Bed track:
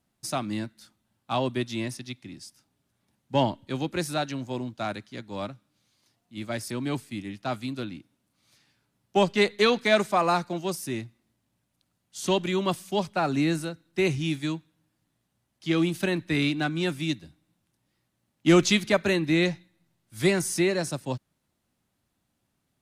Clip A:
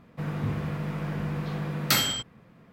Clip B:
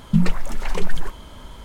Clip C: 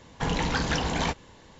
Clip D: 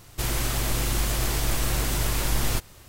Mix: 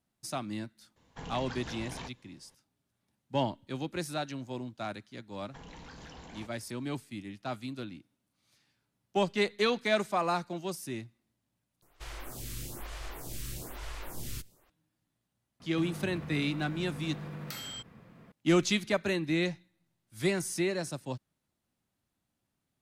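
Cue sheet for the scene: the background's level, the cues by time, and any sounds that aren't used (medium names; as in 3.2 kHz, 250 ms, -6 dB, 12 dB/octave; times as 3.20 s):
bed track -6.5 dB
0.96 s: add C -16 dB
5.34 s: add C -16 dB + peak limiter -24 dBFS
11.82 s: replace with D -12 dB + lamp-driven phase shifter 1.1 Hz
15.60 s: add A -0.5 dB + compression 10:1, threshold -37 dBFS
not used: B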